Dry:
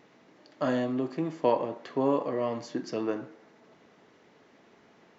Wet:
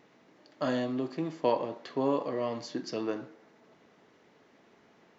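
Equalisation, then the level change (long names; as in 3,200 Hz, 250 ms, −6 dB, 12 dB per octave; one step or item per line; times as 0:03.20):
dynamic equaliser 4,300 Hz, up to +7 dB, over −58 dBFS, Q 1.3
−2.5 dB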